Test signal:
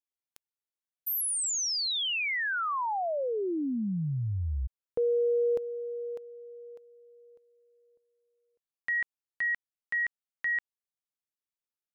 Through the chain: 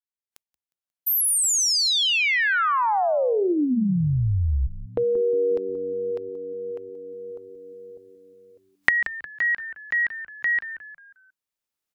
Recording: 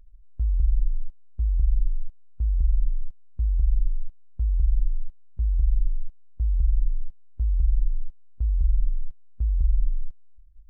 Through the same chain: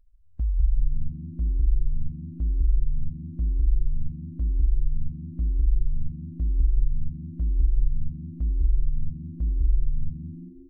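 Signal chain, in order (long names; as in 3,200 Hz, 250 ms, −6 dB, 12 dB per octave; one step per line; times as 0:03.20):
camcorder AGC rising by 9.1 dB per second, up to +24 dB
echo with shifted repeats 179 ms, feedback 41%, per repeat −93 Hz, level −12.5 dB
noise reduction from a noise print of the clip's start 10 dB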